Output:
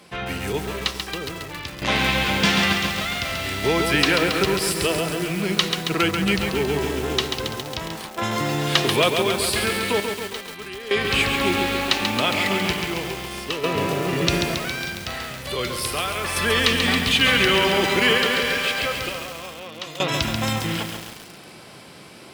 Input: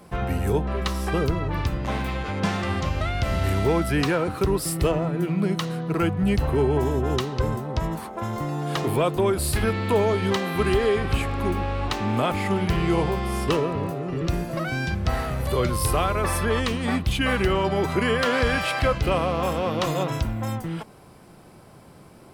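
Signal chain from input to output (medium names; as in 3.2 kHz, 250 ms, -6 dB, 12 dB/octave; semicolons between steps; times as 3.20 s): frequency weighting D; in parallel at +0.5 dB: gain riding within 5 dB 0.5 s; on the sum: random-step tremolo 1.1 Hz, depth 85%; bit-crushed delay 137 ms, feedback 80%, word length 5-bit, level -5 dB; trim -3.5 dB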